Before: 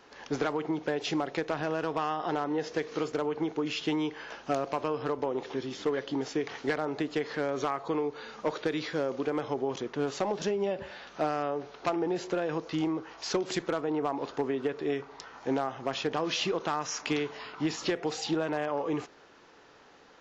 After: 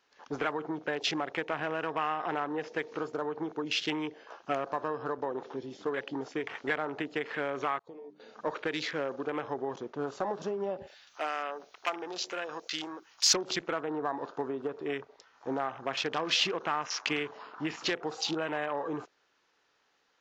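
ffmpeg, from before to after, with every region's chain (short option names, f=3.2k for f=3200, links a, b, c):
-filter_complex "[0:a]asettb=1/sr,asplit=3[a][b][c];[a]atrim=end=7.794[d];[b]atrim=start=7.79:end=8.2,asetpts=PTS-STARTPTS,afade=t=in:d=0.004:c=qsin,afade=t=out:st=0.406:d=0.004:c=qsin,agate=range=-33dB:threshold=-35dB:ratio=3:release=100:detection=peak,bandreject=f=50:t=h:w=6,bandreject=f=100:t=h:w=6,bandreject=f=150:t=h:w=6,bandreject=f=200:t=h:w=6,bandreject=f=250:t=h:w=6,bandreject=f=300:t=h:w=6,bandreject=f=350:t=h:w=6,bandreject=f=400:t=h:w=6,acompressor=threshold=-41dB:ratio=4:attack=3.2:release=140:knee=1:detection=peak[e];[c]atrim=start=8.196[f];[d][e]acrossfade=d=0.004:c1=hsin:c2=qsin[g];[g][f]acrossfade=d=0.004:c1=qsin:c2=hsin,asettb=1/sr,asplit=3[h][i][j];[h]atrim=end=10.874[k];[i]atrim=start=10.87:end=13.34,asetpts=PTS-STARTPTS,afade=t=in:d=0.004:c=qsin,afade=t=out:st=2.466:d=0.004:c=qsin,aemphasis=mode=production:type=75fm,aeval=exprs='val(0)+0.00316*(sin(2*PI*60*n/s)+sin(2*PI*2*60*n/s)/2+sin(2*PI*3*60*n/s)/3+sin(2*PI*4*60*n/s)/4+sin(2*PI*5*60*n/s)/5)':c=same,highpass=f=680:p=1[l];[j]atrim=start=13.336[m];[k][l]acrossfade=d=0.004:c1=hsin:c2=qsin[n];[n][m]acrossfade=d=0.004:c1=qsin:c2=hsin,afwtdn=0.01,tiltshelf=f=970:g=-6"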